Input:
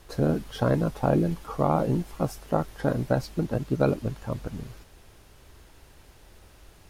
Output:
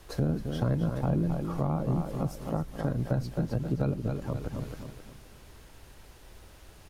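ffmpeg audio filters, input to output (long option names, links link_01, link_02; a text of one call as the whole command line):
ffmpeg -i in.wav -filter_complex "[0:a]aecho=1:1:264|528|792|1056:0.398|0.147|0.0545|0.0202,acrossover=split=200[link_01][link_02];[link_02]acompressor=threshold=-36dB:ratio=2.5[link_03];[link_01][link_03]amix=inputs=2:normalize=0" out.wav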